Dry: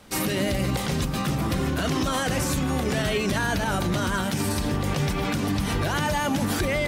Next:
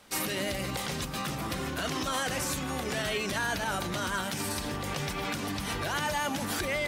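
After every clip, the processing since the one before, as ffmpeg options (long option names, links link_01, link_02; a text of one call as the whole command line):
ffmpeg -i in.wav -af "lowshelf=frequency=410:gain=-9.5,volume=-3dB" out.wav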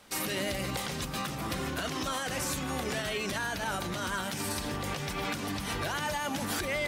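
ffmpeg -i in.wav -af "alimiter=limit=-21.5dB:level=0:latency=1:release=221" out.wav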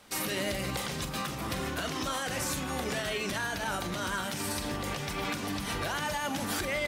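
ffmpeg -i in.wav -filter_complex "[0:a]asplit=2[link_01][link_02];[link_02]adelay=44,volume=-11.5dB[link_03];[link_01][link_03]amix=inputs=2:normalize=0" out.wav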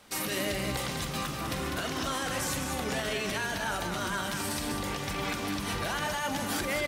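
ffmpeg -i in.wav -af "aecho=1:1:199:0.501" out.wav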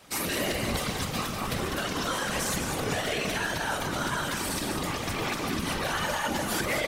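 ffmpeg -i in.wav -af "afftfilt=real='hypot(re,im)*cos(2*PI*random(0))':imag='hypot(re,im)*sin(2*PI*random(1))':win_size=512:overlap=0.75,volume=8.5dB" out.wav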